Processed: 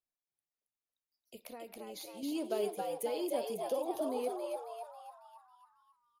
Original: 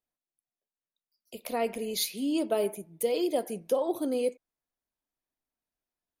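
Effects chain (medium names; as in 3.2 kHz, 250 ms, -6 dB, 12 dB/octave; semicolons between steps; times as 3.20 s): 1.37–2.23 s: compression, threshold -37 dBFS, peak gain reduction 12.5 dB; frequency-shifting echo 273 ms, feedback 50%, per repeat +100 Hz, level -3 dB; trim -8.5 dB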